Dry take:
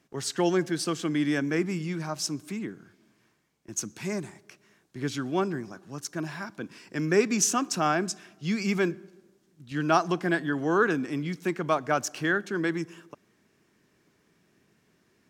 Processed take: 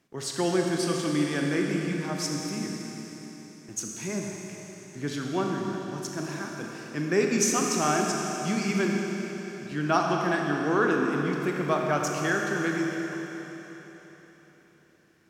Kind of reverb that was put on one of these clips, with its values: Schroeder reverb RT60 4 s, combs from 27 ms, DRR 0 dB; gain -2 dB

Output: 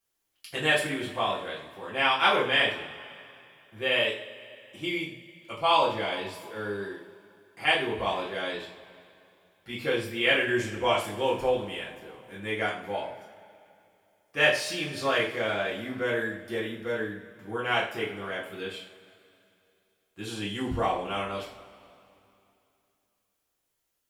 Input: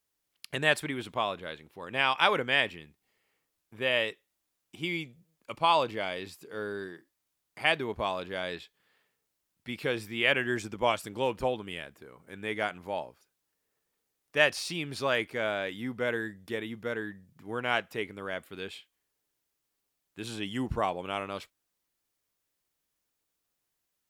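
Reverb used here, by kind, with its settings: two-slope reverb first 0.41 s, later 2.8 s, from -20 dB, DRR -7 dB; gain -5 dB

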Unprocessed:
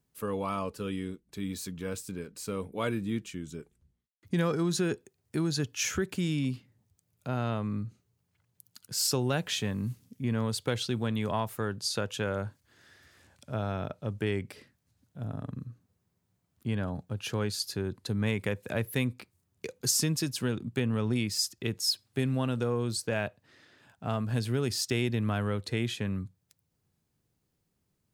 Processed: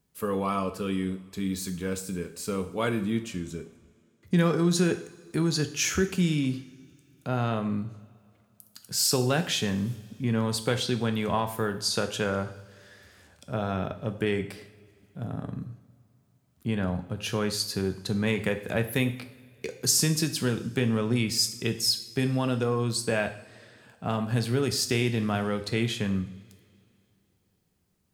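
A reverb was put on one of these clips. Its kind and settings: two-slope reverb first 0.56 s, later 2.7 s, from -20 dB, DRR 6.5 dB; gain +3.5 dB

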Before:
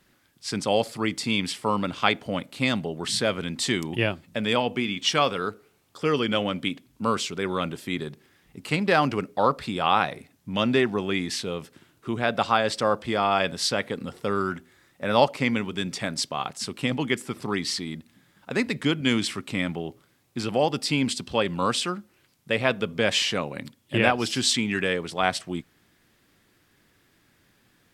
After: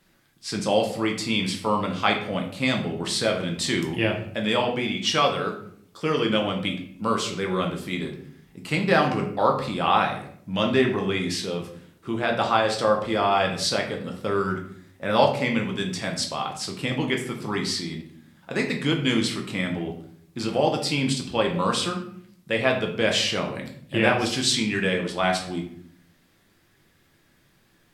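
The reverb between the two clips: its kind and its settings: shoebox room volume 94 m³, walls mixed, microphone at 0.72 m; gain -1.5 dB

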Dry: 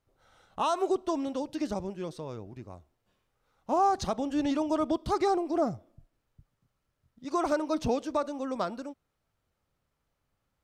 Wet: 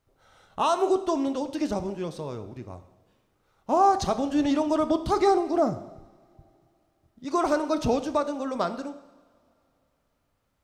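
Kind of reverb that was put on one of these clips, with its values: two-slope reverb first 0.9 s, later 3.3 s, from -21 dB, DRR 9.5 dB; gain +4 dB

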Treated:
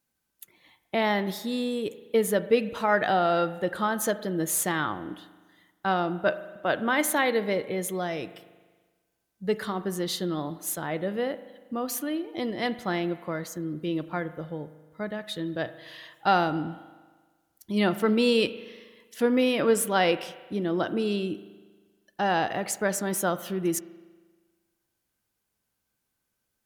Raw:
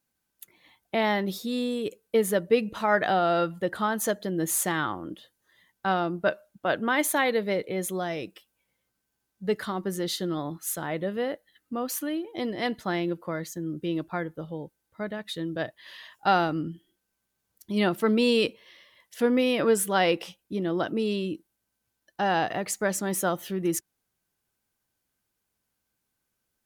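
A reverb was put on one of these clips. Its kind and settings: spring tank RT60 1.4 s, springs 39 ms, chirp 50 ms, DRR 13.5 dB

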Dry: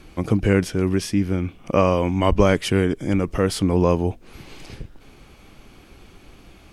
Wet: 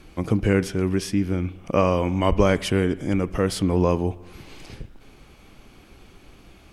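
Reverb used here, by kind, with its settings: spring tank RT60 1.2 s, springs 33/37/56 ms, chirp 60 ms, DRR 17 dB; gain -2 dB

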